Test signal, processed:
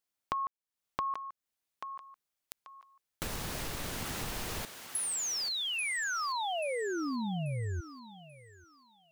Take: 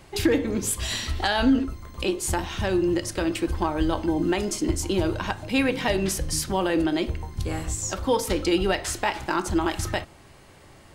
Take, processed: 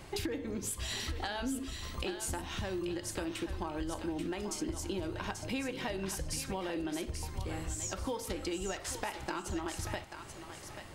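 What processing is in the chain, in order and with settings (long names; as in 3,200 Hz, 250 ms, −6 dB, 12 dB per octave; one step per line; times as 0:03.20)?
downward compressor 6 to 1, threshold −35 dBFS
on a send: feedback echo with a high-pass in the loop 836 ms, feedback 34%, high-pass 700 Hz, level −7 dB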